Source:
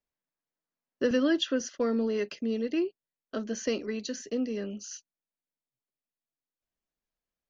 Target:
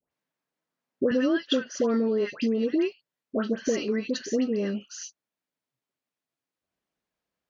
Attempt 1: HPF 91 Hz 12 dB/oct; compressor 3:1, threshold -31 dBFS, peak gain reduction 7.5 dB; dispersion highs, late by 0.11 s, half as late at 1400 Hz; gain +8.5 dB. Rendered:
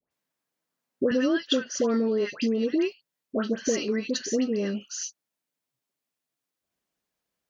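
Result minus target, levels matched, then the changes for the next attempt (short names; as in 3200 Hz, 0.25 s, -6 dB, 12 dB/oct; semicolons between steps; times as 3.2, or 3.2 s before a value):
8000 Hz band +6.0 dB
add after HPF: high shelf 5900 Hz -11.5 dB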